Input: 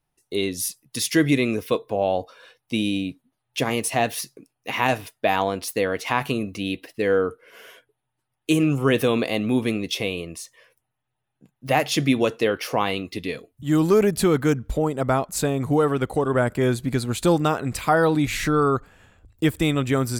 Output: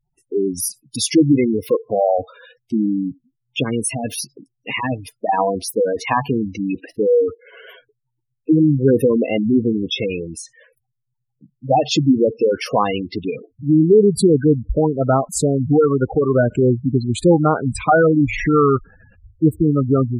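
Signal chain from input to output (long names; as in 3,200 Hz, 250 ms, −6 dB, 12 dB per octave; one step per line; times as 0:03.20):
gate on every frequency bin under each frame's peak −10 dB strong
0:02.86–0:05.29: parametric band 740 Hz −14 dB 0.74 octaves
level +6.5 dB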